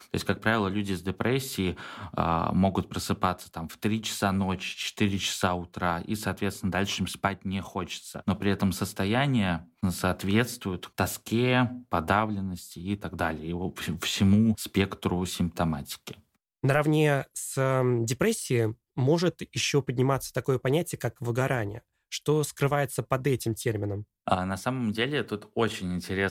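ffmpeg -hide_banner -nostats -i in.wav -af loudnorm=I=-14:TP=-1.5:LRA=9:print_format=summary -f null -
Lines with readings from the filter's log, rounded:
Input Integrated:    -28.3 LUFS
Input True Peak:     -10.0 dBTP
Input LRA:             2.5 LU
Input Threshold:     -38.4 LUFS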